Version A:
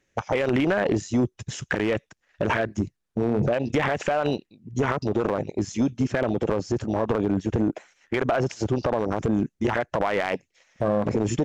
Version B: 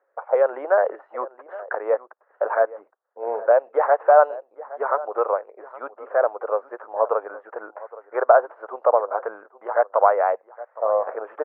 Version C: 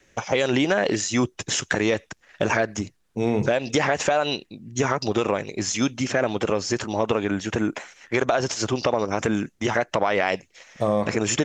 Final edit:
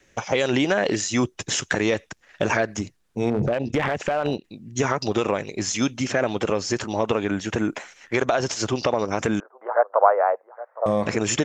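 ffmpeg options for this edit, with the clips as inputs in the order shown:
ffmpeg -i take0.wav -i take1.wav -i take2.wav -filter_complex "[2:a]asplit=3[link_01][link_02][link_03];[link_01]atrim=end=3.302[link_04];[0:a]atrim=start=3.298:end=4.442[link_05];[link_02]atrim=start=4.438:end=9.402[link_06];[1:a]atrim=start=9.398:end=10.862[link_07];[link_03]atrim=start=10.858[link_08];[link_04][link_05]acrossfade=duration=0.004:curve1=hsin:curve2=hsin[link_09];[link_09][link_06]acrossfade=duration=0.004:curve1=hsin:curve2=hsin[link_10];[link_10][link_07]acrossfade=duration=0.004:curve1=hsin:curve2=hsin[link_11];[link_11][link_08]acrossfade=duration=0.004:curve1=hsin:curve2=hsin" out.wav

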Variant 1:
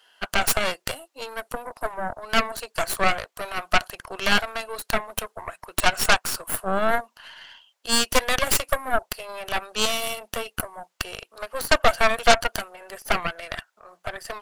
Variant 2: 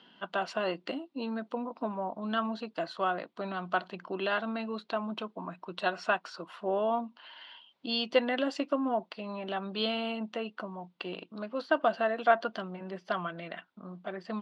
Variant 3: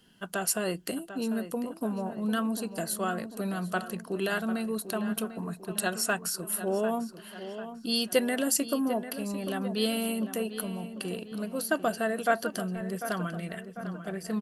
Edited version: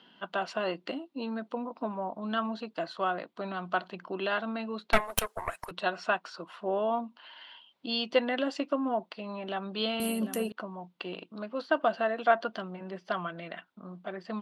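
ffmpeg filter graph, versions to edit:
ffmpeg -i take0.wav -i take1.wav -i take2.wav -filter_complex "[1:a]asplit=3[link_01][link_02][link_03];[link_01]atrim=end=4.932[link_04];[0:a]atrim=start=4.928:end=5.712[link_05];[link_02]atrim=start=5.708:end=10.002[link_06];[2:a]atrim=start=9.998:end=10.522[link_07];[link_03]atrim=start=10.518[link_08];[link_04][link_05]acrossfade=duration=0.004:curve1=hsin:curve2=hsin[link_09];[link_09][link_06]acrossfade=duration=0.004:curve1=hsin:curve2=hsin[link_10];[link_10][link_07]acrossfade=duration=0.004:curve1=hsin:curve2=hsin[link_11];[link_11][link_08]acrossfade=duration=0.004:curve1=hsin:curve2=hsin" out.wav

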